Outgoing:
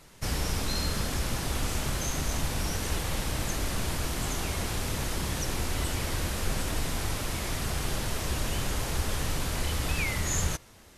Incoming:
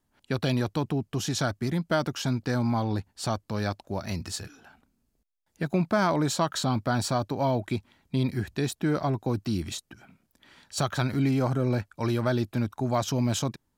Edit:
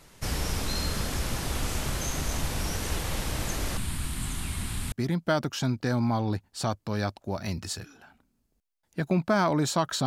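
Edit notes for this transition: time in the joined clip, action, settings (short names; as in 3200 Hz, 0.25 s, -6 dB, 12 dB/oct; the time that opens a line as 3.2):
outgoing
3.77–4.92 EQ curve 240 Hz 0 dB, 500 Hz -17 dB, 1000 Hz -6 dB, 3900 Hz -2 dB, 6000 Hz -10 dB, 8900 Hz +4 dB, 13000 Hz -5 dB
4.92 switch to incoming from 1.55 s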